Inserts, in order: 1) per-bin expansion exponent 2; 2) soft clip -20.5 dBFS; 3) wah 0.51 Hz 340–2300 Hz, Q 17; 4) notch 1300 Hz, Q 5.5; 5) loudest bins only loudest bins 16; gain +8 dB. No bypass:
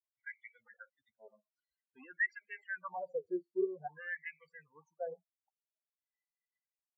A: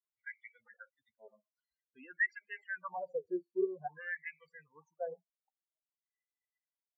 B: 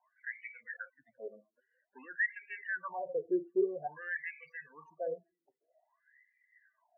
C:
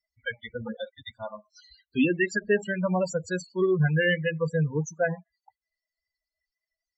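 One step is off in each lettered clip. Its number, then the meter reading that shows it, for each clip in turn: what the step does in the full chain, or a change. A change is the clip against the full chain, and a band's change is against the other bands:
2, distortion -22 dB; 1, momentary loudness spread change -7 LU; 3, 125 Hz band +26.5 dB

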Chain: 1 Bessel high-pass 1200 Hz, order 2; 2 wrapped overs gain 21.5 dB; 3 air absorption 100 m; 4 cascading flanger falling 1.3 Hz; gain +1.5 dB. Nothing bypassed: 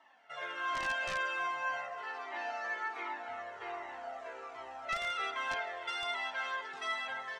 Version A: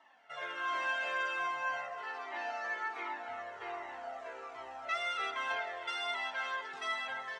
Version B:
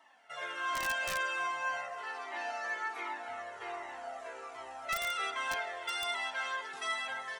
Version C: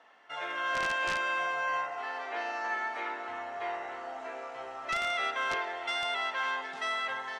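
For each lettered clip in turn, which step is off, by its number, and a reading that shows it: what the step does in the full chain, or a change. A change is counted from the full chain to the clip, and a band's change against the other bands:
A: 2, distortion -15 dB; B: 3, 8 kHz band +7.5 dB; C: 4, loudness change +4.5 LU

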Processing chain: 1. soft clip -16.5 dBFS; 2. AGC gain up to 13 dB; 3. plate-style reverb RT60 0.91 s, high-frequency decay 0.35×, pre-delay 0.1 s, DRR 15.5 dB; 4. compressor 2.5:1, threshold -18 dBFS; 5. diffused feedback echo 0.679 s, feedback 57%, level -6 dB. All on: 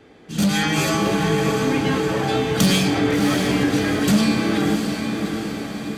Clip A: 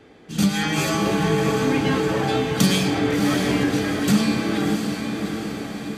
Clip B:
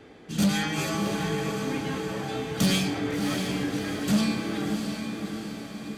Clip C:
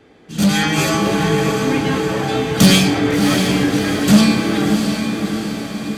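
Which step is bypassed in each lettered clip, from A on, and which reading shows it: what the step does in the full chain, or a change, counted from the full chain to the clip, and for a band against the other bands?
1, distortion -11 dB; 2, momentary loudness spread change +2 LU; 4, 500 Hz band -1.5 dB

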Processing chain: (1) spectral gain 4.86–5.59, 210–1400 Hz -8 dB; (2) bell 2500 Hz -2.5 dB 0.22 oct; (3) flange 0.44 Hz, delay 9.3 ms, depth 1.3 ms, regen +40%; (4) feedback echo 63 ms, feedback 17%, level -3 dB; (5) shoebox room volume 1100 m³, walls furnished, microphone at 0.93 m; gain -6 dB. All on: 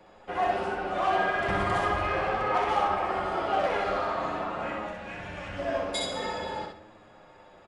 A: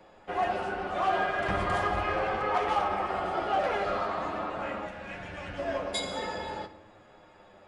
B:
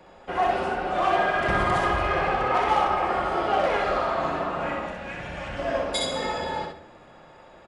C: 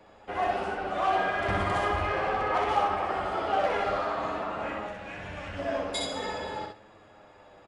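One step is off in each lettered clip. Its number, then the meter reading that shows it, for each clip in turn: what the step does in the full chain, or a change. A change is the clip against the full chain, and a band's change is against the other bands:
4, echo-to-direct -1.5 dB to -8.5 dB; 3, loudness change +4.0 LU; 5, crest factor change +2.0 dB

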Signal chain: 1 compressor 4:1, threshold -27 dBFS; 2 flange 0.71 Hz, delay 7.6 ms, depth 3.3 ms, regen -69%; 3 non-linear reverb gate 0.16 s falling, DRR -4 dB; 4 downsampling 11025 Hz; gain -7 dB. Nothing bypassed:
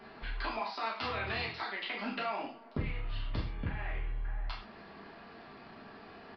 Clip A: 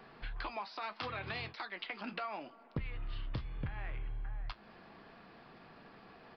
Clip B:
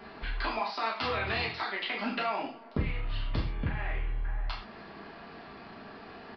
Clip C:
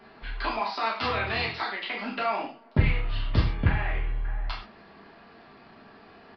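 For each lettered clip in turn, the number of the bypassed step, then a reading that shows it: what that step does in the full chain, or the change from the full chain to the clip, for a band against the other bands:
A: 3, 125 Hz band +2.0 dB; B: 2, loudness change +4.5 LU; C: 1, mean gain reduction 5.0 dB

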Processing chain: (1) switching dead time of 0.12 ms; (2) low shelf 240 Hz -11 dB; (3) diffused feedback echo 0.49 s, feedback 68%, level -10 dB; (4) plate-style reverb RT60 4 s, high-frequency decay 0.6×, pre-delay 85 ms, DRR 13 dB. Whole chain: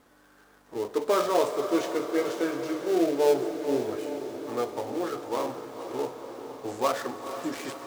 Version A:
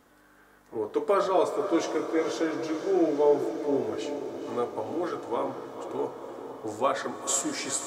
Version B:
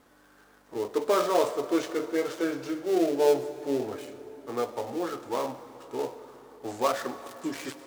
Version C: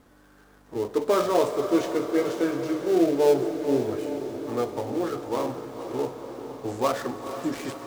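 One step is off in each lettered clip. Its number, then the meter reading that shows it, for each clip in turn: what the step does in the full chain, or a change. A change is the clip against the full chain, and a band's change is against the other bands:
1, distortion -14 dB; 3, echo-to-direct -6.0 dB to -13.0 dB; 2, 125 Hz band +8.0 dB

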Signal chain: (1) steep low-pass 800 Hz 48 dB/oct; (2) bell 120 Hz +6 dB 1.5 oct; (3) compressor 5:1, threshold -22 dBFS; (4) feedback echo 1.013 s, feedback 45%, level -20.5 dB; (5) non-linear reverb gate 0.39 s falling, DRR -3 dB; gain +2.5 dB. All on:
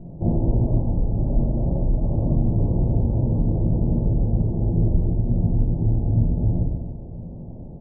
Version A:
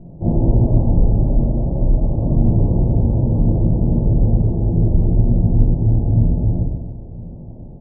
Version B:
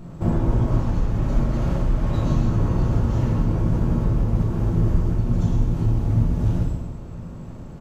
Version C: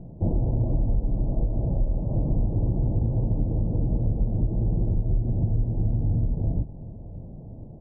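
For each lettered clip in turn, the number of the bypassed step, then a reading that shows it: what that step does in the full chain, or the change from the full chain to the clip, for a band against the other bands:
3, mean gain reduction 4.0 dB; 1, 1 kHz band +6.5 dB; 5, momentary loudness spread change +4 LU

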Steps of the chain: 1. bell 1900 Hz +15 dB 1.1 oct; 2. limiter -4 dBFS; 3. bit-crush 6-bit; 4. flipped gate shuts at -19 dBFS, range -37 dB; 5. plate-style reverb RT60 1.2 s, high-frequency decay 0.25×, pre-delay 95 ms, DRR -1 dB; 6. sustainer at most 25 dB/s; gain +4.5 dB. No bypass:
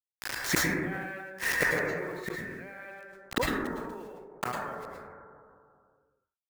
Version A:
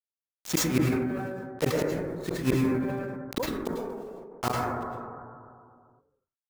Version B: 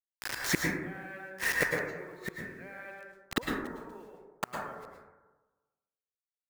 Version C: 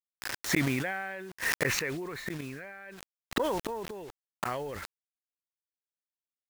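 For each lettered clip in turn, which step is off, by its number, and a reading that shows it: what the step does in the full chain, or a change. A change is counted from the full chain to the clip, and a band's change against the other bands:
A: 1, 2 kHz band -12.0 dB; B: 6, crest factor change +2.5 dB; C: 5, 2 kHz band -3.0 dB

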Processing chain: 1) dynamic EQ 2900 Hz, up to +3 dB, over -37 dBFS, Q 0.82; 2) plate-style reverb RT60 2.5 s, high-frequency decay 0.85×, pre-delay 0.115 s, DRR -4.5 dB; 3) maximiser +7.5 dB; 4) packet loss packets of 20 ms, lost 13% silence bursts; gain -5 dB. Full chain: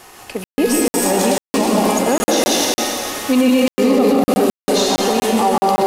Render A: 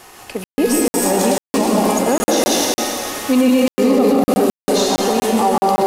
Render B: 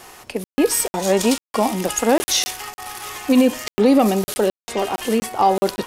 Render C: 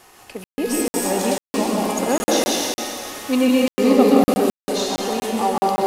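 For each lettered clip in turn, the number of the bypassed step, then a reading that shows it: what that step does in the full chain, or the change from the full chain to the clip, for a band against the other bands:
1, 4 kHz band -2.0 dB; 2, momentary loudness spread change +8 LU; 3, momentary loudness spread change +6 LU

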